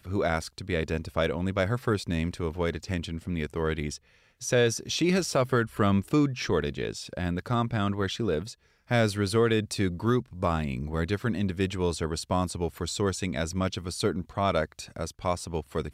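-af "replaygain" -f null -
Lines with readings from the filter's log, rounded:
track_gain = +8.6 dB
track_peak = 0.156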